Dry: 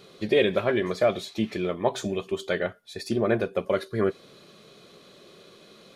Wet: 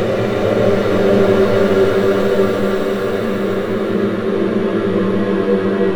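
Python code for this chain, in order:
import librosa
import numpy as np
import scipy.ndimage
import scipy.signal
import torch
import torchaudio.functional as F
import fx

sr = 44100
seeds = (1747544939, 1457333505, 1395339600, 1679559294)

p1 = fx.tracing_dist(x, sr, depth_ms=0.35)
p2 = p1 + fx.echo_bbd(p1, sr, ms=86, stages=2048, feedback_pct=59, wet_db=-5.0, dry=0)
p3 = fx.rev_gated(p2, sr, seeds[0], gate_ms=350, shape='rising', drr_db=-1.0)
p4 = fx.paulstretch(p3, sr, seeds[1], factor=14.0, window_s=0.25, from_s=3.94)
y = p4 * 10.0 ** (6.0 / 20.0)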